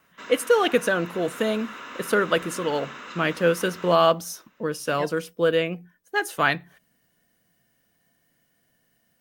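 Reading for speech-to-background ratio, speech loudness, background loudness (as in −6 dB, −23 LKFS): 15.0 dB, −24.0 LKFS, −39.0 LKFS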